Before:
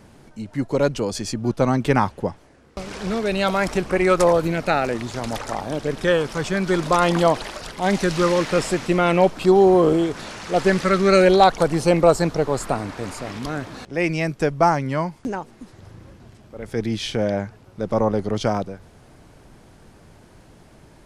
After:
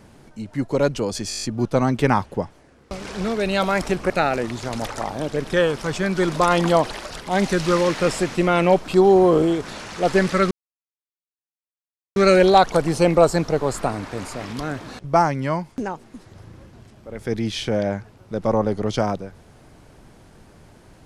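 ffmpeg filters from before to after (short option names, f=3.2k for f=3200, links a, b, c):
-filter_complex "[0:a]asplit=11[a][b][c][d][e][f][g][h][i][j][k];[a]atrim=end=1.312[l];[b]atrim=start=1.288:end=1.312[m];[c]atrim=start=1.288:end=1.312[n];[d]atrim=start=1.288:end=1.312[o];[e]atrim=start=1.288:end=1.312[p];[f]atrim=start=1.288:end=1.312[q];[g]atrim=start=1.288:end=1.312[r];[h]atrim=start=1.288:end=3.962[s];[i]atrim=start=4.608:end=11.02,asetpts=PTS-STARTPTS,afade=t=out:st=6.408:d=0.004:c=hsin,apad=pad_dur=1.65[t];[j]atrim=start=11.02:end=13.902,asetpts=PTS-STARTPTS,afade=t=in:d=0.004:c=hsin[u];[k]atrim=start=14.508[v];[l][m]acrossfade=d=0.004:c1=hsin:c2=hsin[w];[w][n]acrossfade=d=0.004:c1=hsin:c2=hsin[x];[x][o]acrossfade=d=0.004:c1=hsin:c2=hsin[y];[y][p]acrossfade=d=0.004:c1=hsin:c2=hsin[z];[z][q]acrossfade=d=0.004:c1=hsin:c2=hsin[aa];[aa][r]acrossfade=d=0.004:c1=hsin:c2=hsin[ab];[ab][s]acrossfade=d=0.004:c1=hsin:c2=hsin[ac];[t][u]concat=n=2:v=0:a=1[ad];[ac][ad]acrossfade=d=0.004:c1=hsin:c2=hsin[ae];[ae][v]acrossfade=d=0.004:c1=hsin:c2=hsin"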